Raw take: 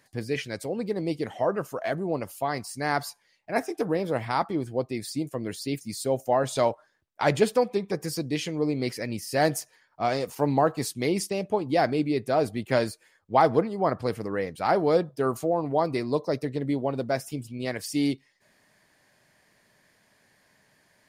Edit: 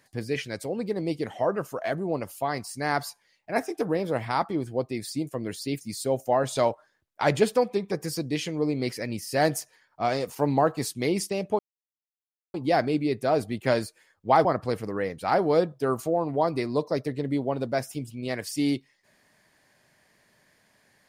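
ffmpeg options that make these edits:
-filter_complex "[0:a]asplit=3[a][b][c];[a]atrim=end=11.59,asetpts=PTS-STARTPTS,afade=t=out:st=11.586:d=0.004:c=hsin,apad=pad_dur=0.95[d];[b]atrim=start=11.59:end=13.502,asetpts=PTS-STARTPTS,afade=t=in:d=0.004:c=hsin[e];[c]atrim=start=13.818[f];[d][e]concat=n=2:v=0:a=1[g];[g][f]acrossfade=d=0.004:c1=hsin:c2=hsin"

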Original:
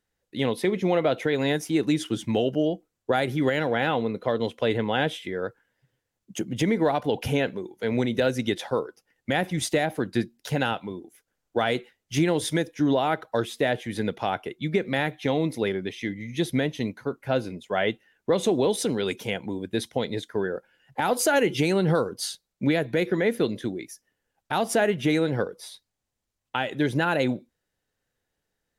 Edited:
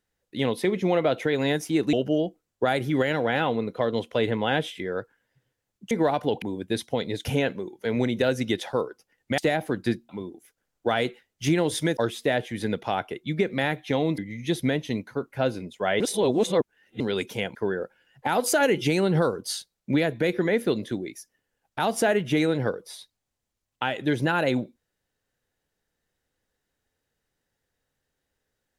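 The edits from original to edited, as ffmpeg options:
-filter_complex "[0:a]asplit=12[a][b][c][d][e][f][g][h][i][j][k][l];[a]atrim=end=1.932[m];[b]atrim=start=2.398:end=6.382[n];[c]atrim=start=6.718:end=7.232[o];[d]atrim=start=19.448:end=20.282[p];[e]atrim=start=7.228:end=9.362[q];[f]atrim=start=9.668:end=10.382[r];[g]atrim=start=10.788:end=12.672[s];[h]atrim=start=13.318:end=15.532[t];[i]atrim=start=16.078:end=17.902[u];[j]atrim=start=17.898:end=18.902,asetpts=PTS-STARTPTS,areverse[v];[k]atrim=start=18.898:end=19.452[w];[l]atrim=start=20.278[x];[m][n]acrossfade=d=0.004:c1=hsin:c2=hsin[y];[y][o]acrossfade=d=0.004:c1=hsin:c2=hsin[z];[z][p]acrossfade=d=0.004:c1=hsin:c2=hsin[aa];[aa][q]acrossfade=d=0.004:c1=hsin:c2=hsin[ab];[ab][r]acrossfade=d=0.004:c1=hsin:c2=hsin[ac];[ac][s]acrossfade=d=0.004:c1=hsin:c2=hsin[ad];[ad][t]acrossfade=d=0.004:c1=hsin:c2=hsin[ae];[ae][u]acrossfade=d=0.004:c1=hsin:c2=hsin[af];[af][v]acrossfade=d=0.004:c1=hsin:c2=hsin[ag];[ag][w]acrossfade=d=0.004:c1=hsin:c2=hsin[ah];[ah][x]acrossfade=d=0.004:c1=hsin:c2=hsin"

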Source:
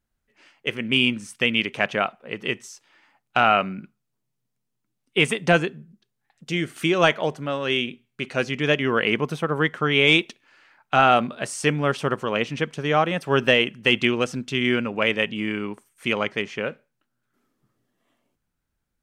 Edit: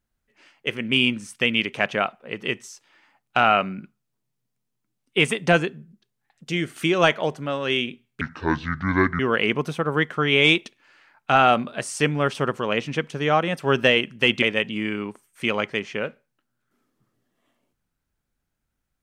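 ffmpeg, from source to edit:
-filter_complex "[0:a]asplit=4[a][b][c][d];[a]atrim=end=8.214[e];[b]atrim=start=8.21:end=8.83,asetpts=PTS-STARTPTS,asetrate=27783,aresample=44100[f];[c]atrim=start=8.826:end=14.062[g];[d]atrim=start=15.048[h];[e][f]acrossfade=d=0.004:c1=hsin:c2=hsin[i];[i][g]acrossfade=d=0.004:c1=hsin:c2=hsin[j];[j][h]acrossfade=d=0.004:c1=hsin:c2=hsin"

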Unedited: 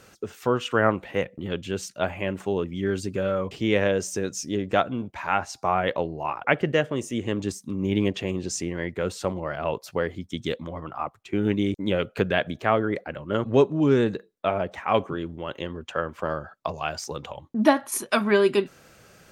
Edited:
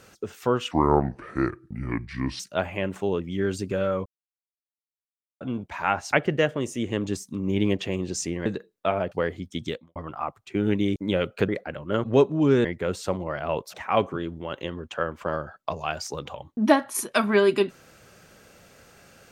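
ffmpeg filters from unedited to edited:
-filter_complex "[0:a]asplit=12[a][b][c][d][e][f][g][h][i][j][k][l];[a]atrim=end=0.714[m];[b]atrim=start=0.71:end=1.84,asetpts=PTS-STARTPTS,asetrate=29547,aresample=44100[n];[c]atrim=start=1.836:end=3.5,asetpts=PTS-STARTPTS,afade=t=out:st=1.66:d=0.004:c=hsin[o];[d]atrim=start=3.5:end=4.85,asetpts=PTS-STARTPTS,volume=0[p];[e]atrim=start=4.85:end=5.572,asetpts=PTS-STARTPTS,afade=t=in:d=0.004:c=hsin[q];[f]atrim=start=6.478:end=8.812[r];[g]atrim=start=14.048:end=14.712[s];[h]atrim=start=9.898:end=10.74,asetpts=PTS-STARTPTS,afade=t=out:st=0.552:d=0.29:c=qua[t];[i]atrim=start=10.74:end=12.272,asetpts=PTS-STARTPTS,afade=t=in:d=0.004:c=hsin[u];[j]atrim=start=12.888:end=14.052[v];[k]atrim=start=8.808:end=9.902[w];[l]atrim=start=14.708[x];[m][n]acrossfade=d=0.004:c1=hsin:c2=hsin[y];[o][p][q]concat=n=3:v=0:a=1[z];[y][z]acrossfade=d=0.004:c1=hsin:c2=hsin[aa];[aa][r]acrossfade=d=0.004:c1=hsin:c2=hsin[ab];[ab][s]acrossfade=d=0.004:c1=hsin:c2=hsin[ac];[t][u]concat=n=2:v=0:a=1[ad];[ac][ad]acrossfade=d=0.004:c1=hsin:c2=hsin[ae];[ae][v]acrossfade=d=0.004:c1=hsin:c2=hsin[af];[af][w]acrossfade=d=0.004:c1=hsin:c2=hsin[ag];[ag][x]acrossfade=d=0.004:c1=hsin:c2=hsin"

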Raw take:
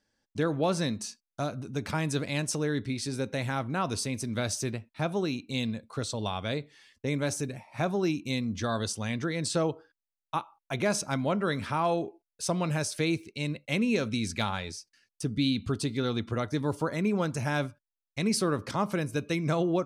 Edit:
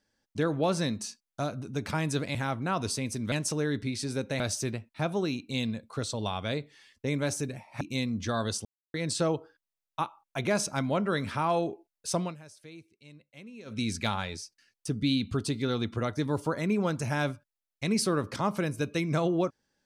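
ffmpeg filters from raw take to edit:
-filter_complex "[0:a]asplit=9[a][b][c][d][e][f][g][h][i];[a]atrim=end=2.352[j];[b]atrim=start=3.428:end=4.402[k];[c]atrim=start=2.348:end=3.432[l];[d]atrim=start=4.398:end=7.812[m];[e]atrim=start=8.158:end=9,asetpts=PTS-STARTPTS,afade=t=out:st=0.838:d=0.004:c=hsin[n];[f]atrim=start=9:end=9.29,asetpts=PTS-STARTPTS,volume=0[o];[g]atrim=start=9.29:end=12.71,asetpts=PTS-STARTPTS,afade=t=in:d=0.004:c=hsin,afade=t=out:st=3.25:d=0.17:silence=0.1[p];[h]atrim=start=12.71:end=14,asetpts=PTS-STARTPTS,volume=-20dB[q];[i]atrim=start=14,asetpts=PTS-STARTPTS,afade=t=in:d=0.17:silence=0.1[r];[j][k]acrossfade=d=0.004:c1=hsin:c2=hsin[s];[s][l]acrossfade=d=0.004:c1=hsin:c2=hsin[t];[t][m]acrossfade=d=0.004:c1=hsin:c2=hsin[u];[n][o][p][q][r]concat=n=5:v=0:a=1[v];[u][v]acrossfade=d=0.004:c1=hsin:c2=hsin"

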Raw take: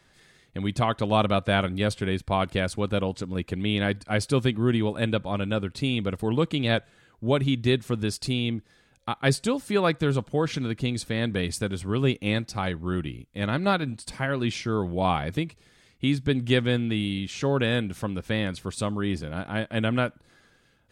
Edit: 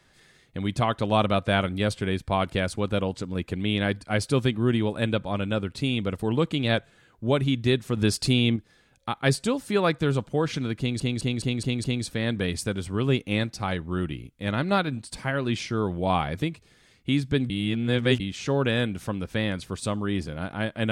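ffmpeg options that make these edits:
-filter_complex "[0:a]asplit=10[a][b][c][d][e][f][g][h][i][j];[a]atrim=end=7.972[k];[b]atrim=start=7.968:end=8.562,asetpts=PTS-STARTPTS,volume=5dB[l];[c]atrim=start=8.558:end=11.002[m];[d]atrim=start=10.788:end=11.002[n];[e]atrim=start=10.788:end=11.002[o];[f]atrim=start=10.788:end=11.002[p];[g]atrim=start=10.788:end=11.002[q];[h]atrim=start=10.788:end=16.452[r];[i]atrim=start=16.448:end=17.152,asetpts=PTS-STARTPTS,areverse[s];[j]atrim=start=17.148[t];[k][l]acrossfade=d=0.004:c1=hsin:c2=hsin[u];[u][m]acrossfade=d=0.004:c1=hsin:c2=hsin[v];[v][n]acrossfade=d=0.004:c1=hsin:c2=hsin[w];[w][o]acrossfade=d=0.004:c1=hsin:c2=hsin[x];[x][p]acrossfade=d=0.004:c1=hsin:c2=hsin[y];[y][q]acrossfade=d=0.004:c1=hsin:c2=hsin[z];[z][r]acrossfade=d=0.004:c1=hsin:c2=hsin[aa];[aa][s]acrossfade=d=0.004:c1=hsin:c2=hsin[ab];[ab][t]acrossfade=d=0.004:c1=hsin:c2=hsin"

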